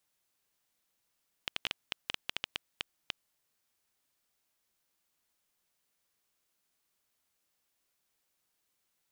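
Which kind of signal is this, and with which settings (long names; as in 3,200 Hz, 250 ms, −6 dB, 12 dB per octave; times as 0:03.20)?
Geiger counter clicks 5.8 per second −14 dBFS 2.38 s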